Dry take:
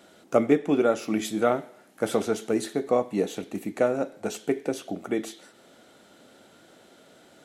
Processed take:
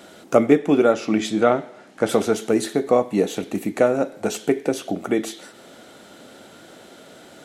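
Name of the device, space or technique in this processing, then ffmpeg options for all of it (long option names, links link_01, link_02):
parallel compression: -filter_complex "[0:a]asplit=2[link_01][link_02];[link_02]acompressor=threshold=-34dB:ratio=6,volume=-2.5dB[link_03];[link_01][link_03]amix=inputs=2:normalize=0,asettb=1/sr,asplit=3[link_04][link_05][link_06];[link_04]atrim=end=0.924[link_07];[link_05]atrim=start=0.92:end=2.09,asetpts=PTS-STARTPTS,afade=type=in:duration=0.004:curve=qsin,afade=type=out:start_time=1.166:duration=0.004:curve=qsin,lowpass=6400[link_08];[link_06]atrim=start=2.086[link_09];[link_07][link_08]acrossfade=duration=0.004:curve1=hsin:curve2=qsin[link_10];[link_10][link_09]acrossfade=duration=0.004:curve1=qsin:curve2=hsin,volume=4.5dB"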